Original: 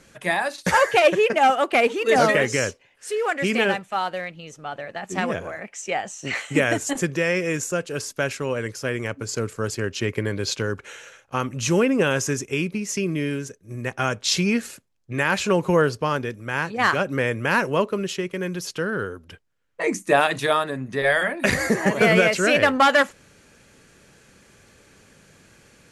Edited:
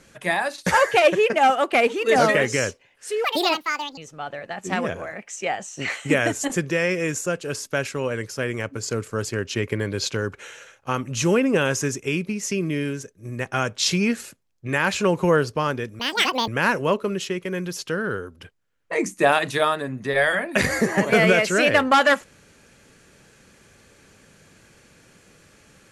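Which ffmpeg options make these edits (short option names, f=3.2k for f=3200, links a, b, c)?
-filter_complex "[0:a]asplit=5[a][b][c][d][e];[a]atrim=end=3.244[f];[b]atrim=start=3.24:end=4.43,asetpts=PTS-STARTPTS,asetrate=71442,aresample=44100,atrim=end_sample=32394,asetpts=PTS-STARTPTS[g];[c]atrim=start=4.426:end=16.454[h];[d]atrim=start=16.45:end=17.36,asetpts=PTS-STARTPTS,asetrate=83349,aresample=44100,atrim=end_sample=21233,asetpts=PTS-STARTPTS[i];[e]atrim=start=17.356[j];[f][g]acrossfade=d=0.004:c1=hsin:c2=hsin[k];[k][h]acrossfade=d=0.004:c1=hsin:c2=hsin[l];[l][i]acrossfade=d=0.004:c1=hsin:c2=hsin[m];[m][j]acrossfade=d=0.004:c1=hsin:c2=hsin"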